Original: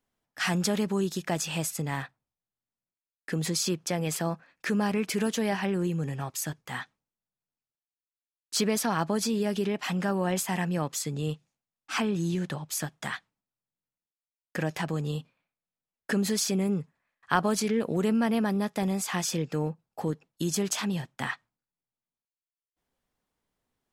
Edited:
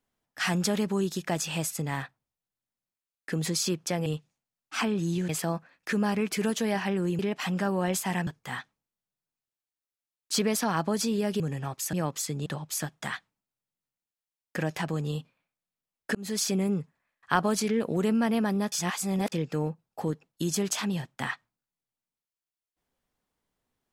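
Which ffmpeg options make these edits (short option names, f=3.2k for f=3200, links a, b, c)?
-filter_complex "[0:a]asplit=11[a][b][c][d][e][f][g][h][i][j][k];[a]atrim=end=4.062[l];[b]atrim=start=11.228:end=12.462[m];[c]atrim=start=4.058:end=5.962[n];[d]atrim=start=9.618:end=10.702[o];[e]atrim=start=6.488:end=9.622[p];[f]atrim=start=5.958:end=6.492[q];[g]atrim=start=10.698:end=11.232[r];[h]atrim=start=12.458:end=16.15,asetpts=PTS-STARTPTS,afade=t=out:st=3.688:d=0.004:c=hsin[s];[i]atrim=start=16.15:end=18.722,asetpts=PTS-STARTPTS,afade=t=in:d=0.27[t];[j]atrim=start=18.718:end=19.322,asetpts=PTS-STARTPTS,areverse[u];[k]atrim=start=19.318[v];[l][m]acrossfade=d=0.004:c1=hsin:c2=hsin[w];[w][n]acrossfade=d=0.004:c1=hsin:c2=hsin[x];[x][o]acrossfade=d=0.004:c1=hsin:c2=hsin[y];[y][p]acrossfade=d=0.004:c1=hsin:c2=hsin[z];[z][q]acrossfade=d=0.004:c1=hsin:c2=hsin[aa];[aa][r]acrossfade=d=0.004:c1=hsin:c2=hsin[ab];[s][t]concat=n=2:v=0:a=1[ac];[ab][ac]acrossfade=d=0.004:c1=hsin:c2=hsin[ad];[ad][u]acrossfade=d=0.004:c1=hsin:c2=hsin[ae];[ae][v]acrossfade=d=0.004:c1=hsin:c2=hsin"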